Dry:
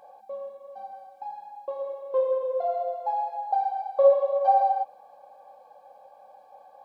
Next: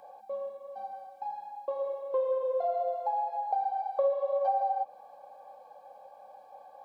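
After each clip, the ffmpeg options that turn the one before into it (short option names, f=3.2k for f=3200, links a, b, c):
-filter_complex "[0:a]acrossover=split=520|1700[a][b][c];[a]acompressor=threshold=-35dB:ratio=4[d];[b]acompressor=threshold=-30dB:ratio=4[e];[c]acompressor=threshold=-59dB:ratio=4[f];[d][e][f]amix=inputs=3:normalize=0"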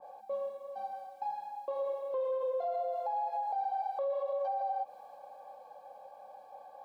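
-af "alimiter=level_in=4dB:limit=-24dB:level=0:latency=1:release=60,volume=-4dB,adynamicequalizer=threshold=0.00501:dfrequency=1600:dqfactor=0.7:tfrequency=1600:tqfactor=0.7:attack=5:release=100:ratio=0.375:range=2:mode=boostabove:tftype=highshelf"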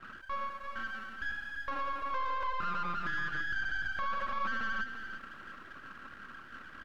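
-filter_complex "[0:a]aeval=exprs='abs(val(0))':c=same,asplit=2[a][b];[b]highpass=f=720:p=1,volume=15dB,asoftclip=type=tanh:threshold=-27.5dB[c];[a][c]amix=inputs=2:normalize=0,lowpass=f=2.5k:p=1,volume=-6dB,aecho=1:1:341:0.376"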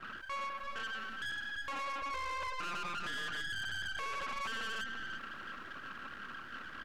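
-af "aeval=exprs='(tanh(100*val(0)+0.25)-tanh(0.25))/100':c=same,volume=4.5dB"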